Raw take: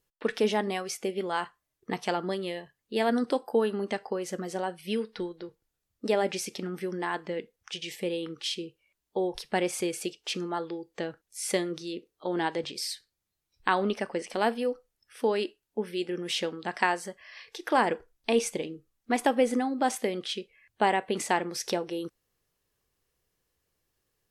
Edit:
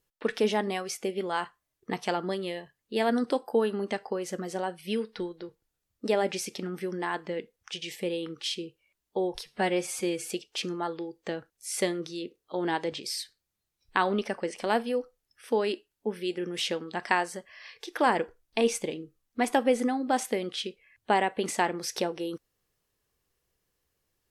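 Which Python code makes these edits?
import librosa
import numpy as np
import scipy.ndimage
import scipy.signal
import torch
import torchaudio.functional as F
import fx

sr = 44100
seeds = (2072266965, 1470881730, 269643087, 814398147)

y = fx.edit(x, sr, fx.stretch_span(start_s=9.41, length_s=0.57, factor=1.5), tone=tone)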